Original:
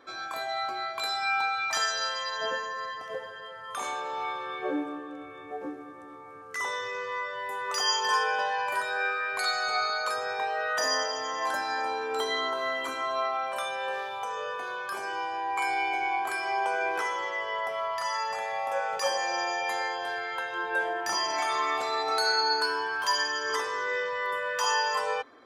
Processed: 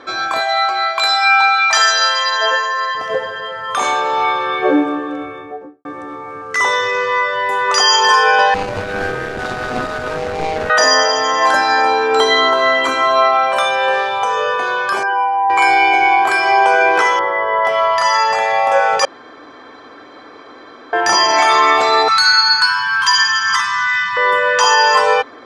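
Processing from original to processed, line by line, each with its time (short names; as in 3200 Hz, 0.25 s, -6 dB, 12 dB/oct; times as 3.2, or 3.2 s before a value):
0.4–2.95 HPF 630 Hz
5.15–5.85 studio fade out
8.54–10.7 median filter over 41 samples
15.03–15.5 spectral contrast raised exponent 1.9
17.19–17.65 polynomial smoothing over 41 samples
19.05–20.93 room tone
22.08–24.17 elliptic band-stop 190–1100 Hz, stop band 70 dB
whole clip: LPF 6800 Hz 12 dB/oct; maximiser +18 dB; gain -1 dB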